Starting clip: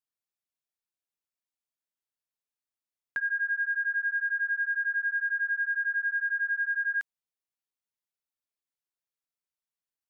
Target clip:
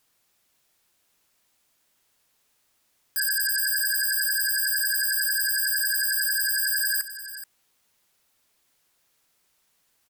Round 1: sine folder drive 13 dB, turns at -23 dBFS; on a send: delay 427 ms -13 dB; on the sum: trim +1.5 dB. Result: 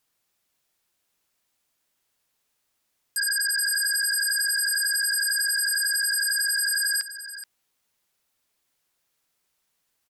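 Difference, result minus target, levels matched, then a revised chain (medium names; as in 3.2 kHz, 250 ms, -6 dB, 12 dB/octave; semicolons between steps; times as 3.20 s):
sine folder: distortion -18 dB
sine folder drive 19 dB, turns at -23 dBFS; on a send: delay 427 ms -13 dB; on the sum: trim +1.5 dB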